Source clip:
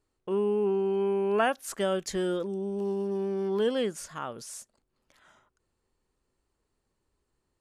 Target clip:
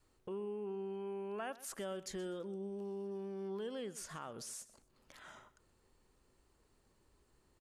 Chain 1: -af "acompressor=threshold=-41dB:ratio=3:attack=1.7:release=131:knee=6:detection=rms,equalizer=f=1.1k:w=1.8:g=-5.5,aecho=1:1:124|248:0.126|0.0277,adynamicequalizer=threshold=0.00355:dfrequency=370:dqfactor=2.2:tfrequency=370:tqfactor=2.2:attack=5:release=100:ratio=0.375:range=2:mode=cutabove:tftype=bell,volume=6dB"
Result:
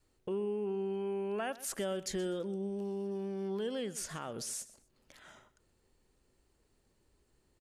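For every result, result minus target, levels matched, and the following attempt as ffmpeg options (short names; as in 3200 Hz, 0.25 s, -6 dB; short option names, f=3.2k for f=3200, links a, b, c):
compressor: peak gain reduction -7.5 dB; 1000 Hz band -2.0 dB
-af "acompressor=threshold=-52dB:ratio=3:attack=1.7:release=131:knee=6:detection=rms,equalizer=f=1.1k:w=1.8:g=-5.5,aecho=1:1:124|248:0.126|0.0277,adynamicequalizer=threshold=0.00355:dfrequency=370:dqfactor=2.2:tfrequency=370:tqfactor=2.2:attack=5:release=100:ratio=0.375:range=2:mode=cutabove:tftype=bell,volume=6dB"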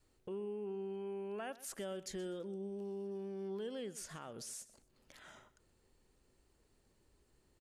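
1000 Hz band -2.5 dB
-af "acompressor=threshold=-52dB:ratio=3:attack=1.7:release=131:knee=6:detection=rms,aecho=1:1:124|248:0.126|0.0277,adynamicequalizer=threshold=0.00355:dfrequency=370:dqfactor=2.2:tfrequency=370:tqfactor=2.2:attack=5:release=100:ratio=0.375:range=2:mode=cutabove:tftype=bell,volume=6dB"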